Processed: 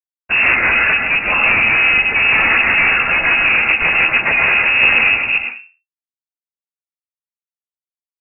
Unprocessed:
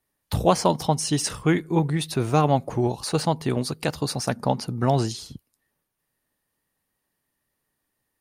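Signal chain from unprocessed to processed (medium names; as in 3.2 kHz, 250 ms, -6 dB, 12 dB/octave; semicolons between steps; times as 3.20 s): frequency axis rescaled in octaves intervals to 118%; 4.41–5.29 s: peaking EQ 160 Hz +7.5 dB 2.4 oct; peak limiter -15.5 dBFS, peak gain reduction 9 dB; waveshaping leveller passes 2; fuzz box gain 46 dB, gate -54 dBFS; on a send at -2 dB: reverberation RT60 0.35 s, pre-delay 70 ms; on the sum: frequency inversion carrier 2.7 kHz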